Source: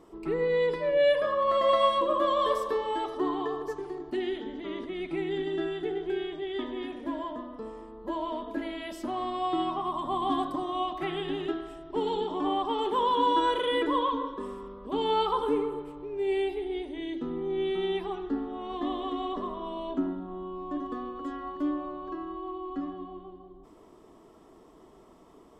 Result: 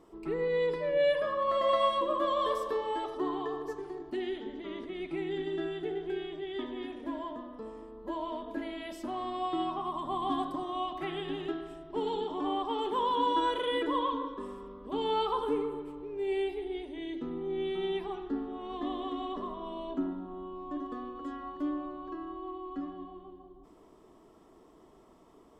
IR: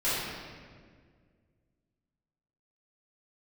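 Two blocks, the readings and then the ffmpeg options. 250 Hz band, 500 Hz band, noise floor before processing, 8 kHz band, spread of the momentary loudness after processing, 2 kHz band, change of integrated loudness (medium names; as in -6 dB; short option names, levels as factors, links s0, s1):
-3.5 dB, -3.5 dB, -55 dBFS, no reading, 12 LU, -3.5 dB, -3.5 dB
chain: -filter_complex "[0:a]asplit=2[s0][s1];[1:a]atrim=start_sample=2205[s2];[s1][s2]afir=irnorm=-1:irlink=0,volume=0.0501[s3];[s0][s3]amix=inputs=2:normalize=0,volume=0.631"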